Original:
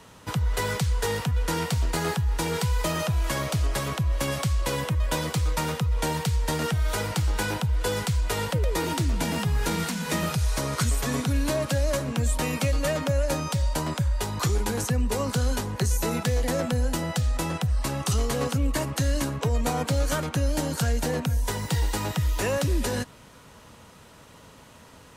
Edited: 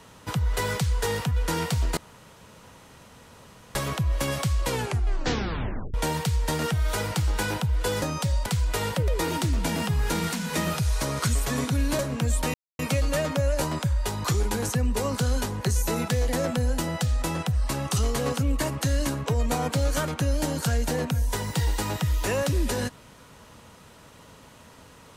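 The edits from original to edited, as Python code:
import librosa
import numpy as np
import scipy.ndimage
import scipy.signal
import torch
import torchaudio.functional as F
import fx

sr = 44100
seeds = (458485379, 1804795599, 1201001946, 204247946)

y = fx.edit(x, sr, fx.room_tone_fill(start_s=1.97, length_s=1.78),
    fx.tape_stop(start_s=4.65, length_s=1.29),
    fx.cut(start_s=11.55, length_s=0.4),
    fx.insert_silence(at_s=12.5, length_s=0.25),
    fx.move(start_s=13.32, length_s=0.44, to_s=8.02), tone=tone)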